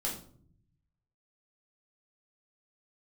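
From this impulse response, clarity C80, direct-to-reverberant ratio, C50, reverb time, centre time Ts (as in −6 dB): 11.0 dB, −5.0 dB, 7.5 dB, 0.55 s, 30 ms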